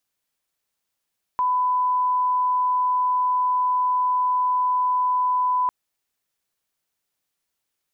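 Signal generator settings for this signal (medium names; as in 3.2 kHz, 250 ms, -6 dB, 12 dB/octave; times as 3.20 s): line-up tone -18 dBFS 4.30 s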